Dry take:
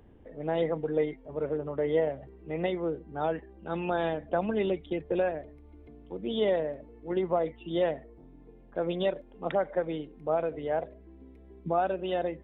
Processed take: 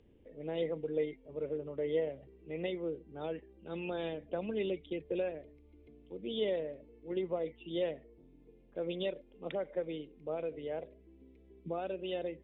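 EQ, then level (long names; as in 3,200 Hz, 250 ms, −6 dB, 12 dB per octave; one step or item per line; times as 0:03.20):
high-frequency loss of the air 140 metres
low-shelf EQ 460 Hz −9.5 dB
flat-topped bell 1,100 Hz −12 dB
0.0 dB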